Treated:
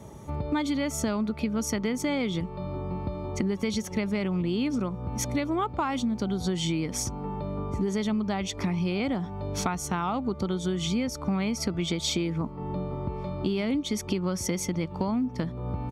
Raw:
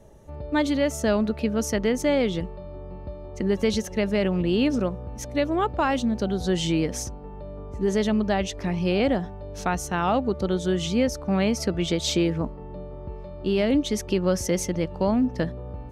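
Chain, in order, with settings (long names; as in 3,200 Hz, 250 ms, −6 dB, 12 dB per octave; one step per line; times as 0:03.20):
high-pass filter 97 Hz 12 dB per octave
comb filter 0.9 ms, depth 49%
downward compressor 6 to 1, threshold −34 dBFS, peak gain reduction 15.5 dB
level +8 dB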